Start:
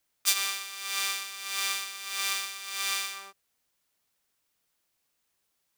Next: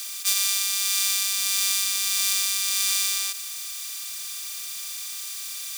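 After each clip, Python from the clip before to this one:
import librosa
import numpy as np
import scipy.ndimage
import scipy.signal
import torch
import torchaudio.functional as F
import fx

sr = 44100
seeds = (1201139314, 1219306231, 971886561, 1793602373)

y = fx.bin_compress(x, sr, power=0.2)
y = fx.high_shelf(y, sr, hz=2300.0, db=10.0)
y = y * 10.0 ** (-8.5 / 20.0)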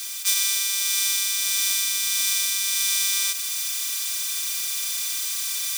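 y = fx.rider(x, sr, range_db=4, speed_s=0.5)
y = y + 0.72 * np.pad(y, (int(7.1 * sr / 1000.0), 0))[:len(y)]
y = y * 10.0 ** (1.0 / 20.0)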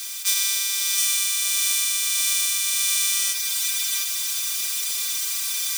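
y = x + 10.0 ** (-4.5 / 20.0) * np.pad(x, (int(716 * sr / 1000.0), 0))[:len(x)]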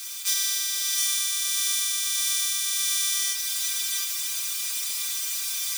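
y = fx.doubler(x, sr, ms=23.0, db=-4.5)
y = y * 10.0 ** (-4.5 / 20.0)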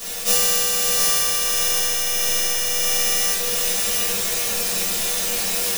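y = (np.kron(x[::3], np.eye(3)[0]) * 3)[:len(x)]
y = fx.room_shoebox(y, sr, seeds[0], volume_m3=37.0, walls='mixed', distance_m=1.7)
y = y * 10.0 ** (-6.5 / 20.0)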